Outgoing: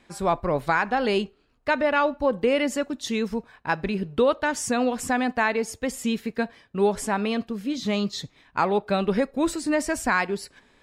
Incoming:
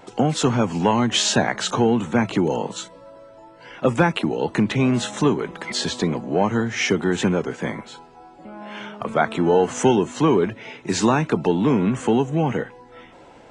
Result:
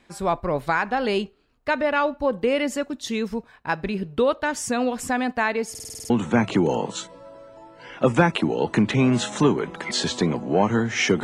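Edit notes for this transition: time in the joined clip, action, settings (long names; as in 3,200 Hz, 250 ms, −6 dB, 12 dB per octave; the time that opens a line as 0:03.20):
outgoing
0:05.70: stutter in place 0.05 s, 8 plays
0:06.10: continue with incoming from 0:01.91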